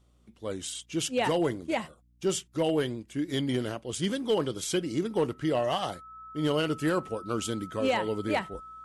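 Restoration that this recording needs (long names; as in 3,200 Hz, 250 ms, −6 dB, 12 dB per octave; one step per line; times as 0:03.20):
clipped peaks rebuilt −19 dBFS
hum removal 59.7 Hz, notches 5
notch filter 1,300 Hz, Q 30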